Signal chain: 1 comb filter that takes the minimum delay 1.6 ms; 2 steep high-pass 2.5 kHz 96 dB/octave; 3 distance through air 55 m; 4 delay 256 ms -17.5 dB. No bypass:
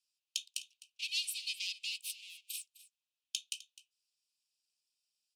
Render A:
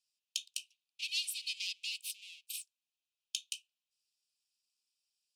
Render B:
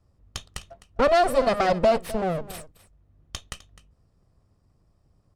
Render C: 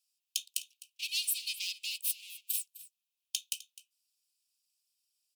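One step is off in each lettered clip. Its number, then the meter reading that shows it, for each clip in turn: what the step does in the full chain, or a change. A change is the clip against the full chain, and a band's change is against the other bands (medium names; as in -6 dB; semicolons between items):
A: 4, momentary loudness spread change -1 LU; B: 2, crest factor change -10.0 dB; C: 3, momentary loudness spread change +6 LU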